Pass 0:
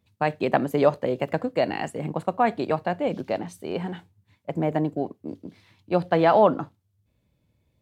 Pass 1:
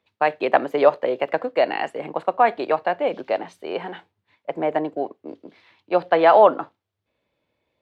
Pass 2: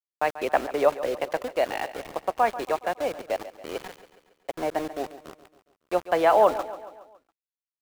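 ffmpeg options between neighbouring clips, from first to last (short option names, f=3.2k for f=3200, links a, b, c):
-filter_complex "[0:a]acrossover=split=350 4300:gain=0.0891 1 0.112[a][b][c];[a][b][c]amix=inputs=3:normalize=0,volume=5.5dB"
-af "aeval=exprs='val(0)+0.00398*(sin(2*PI*60*n/s)+sin(2*PI*2*60*n/s)/2+sin(2*PI*3*60*n/s)/3+sin(2*PI*4*60*n/s)/4+sin(2*PI*5*60*n/s)/5)':c=same,aeval=exprs='val(0)*gte(abs(val(0)),0.0398)':c=same,aecho=1:1:139|278|417|556|695:0.188|0.0998|0.0529|0.028|0.0149,volume=-5.5dB"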